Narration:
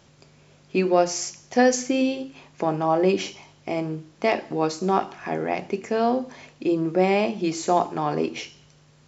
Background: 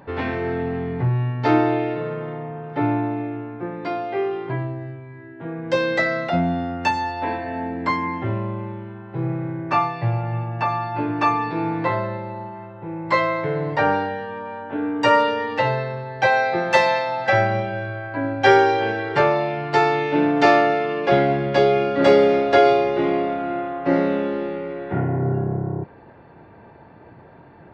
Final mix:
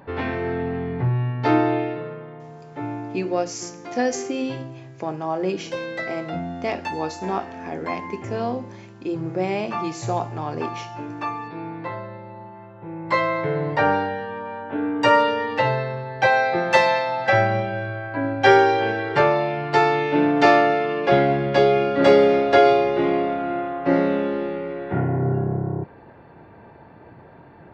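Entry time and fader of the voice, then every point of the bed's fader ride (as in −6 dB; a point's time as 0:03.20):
2.40 s, −4.5 dB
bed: 0:01.79 −1 dB
0:02.29 −9 dB
0:12.10 −9 dB
0:13.40 0 dB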